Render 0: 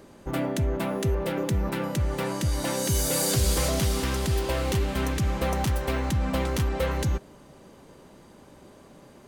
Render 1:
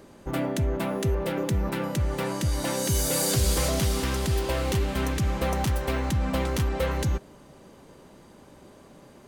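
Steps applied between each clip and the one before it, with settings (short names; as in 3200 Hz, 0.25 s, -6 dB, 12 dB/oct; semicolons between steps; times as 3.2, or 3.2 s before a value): nothing audible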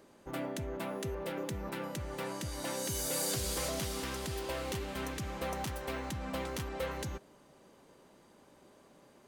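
low shelf 170 Hz -10 dB; gain -8 dB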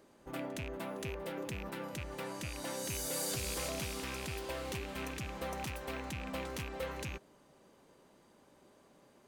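rattling part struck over -38 dBFS, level -29 dBFS; pre-echo 65 ms -21 dB; gain -3 dB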